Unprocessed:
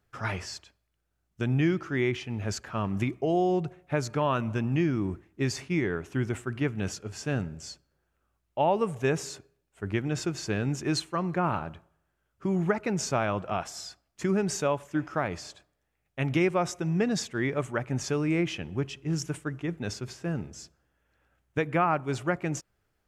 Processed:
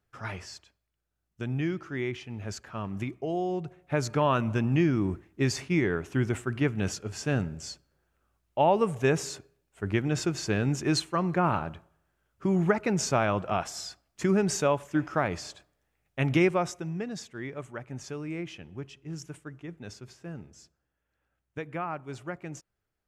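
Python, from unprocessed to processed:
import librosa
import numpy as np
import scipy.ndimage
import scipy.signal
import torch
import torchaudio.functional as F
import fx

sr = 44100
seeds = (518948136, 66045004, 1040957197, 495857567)

y = fx.gain(x, sr, db=fx.line((3.63, -5.0), (4.06, 2.0), (16.45, 2.0), (17.06, -9.0)))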